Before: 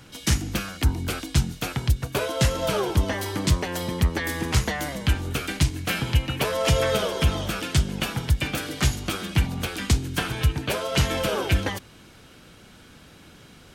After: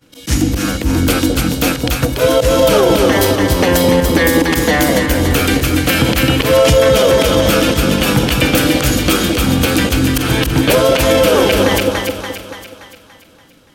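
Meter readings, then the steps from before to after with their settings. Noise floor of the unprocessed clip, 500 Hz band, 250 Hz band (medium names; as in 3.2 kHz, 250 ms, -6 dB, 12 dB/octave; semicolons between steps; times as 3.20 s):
-50 dBFS, +17.0 dB, +16.0 dB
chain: expander -36 dBFS; treble shelf 2.3 kHz +2.5 dB; in parallel at -9.5 dB: saturation -20.5 dBFS, distortion -9 dB; on the sum: slow attack 146 ms; peaking EQ 14 kHz +5 dB 0.37 oct; small resonant body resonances 290/500 Hz, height 10 dB, ringing for 45 ms; on a send: two-band feedback delay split 750 Hz, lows 212 ms, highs 287 ms, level -5.5 dB; on the sum: loudness maximiser +12.5 dB; trim -1 dB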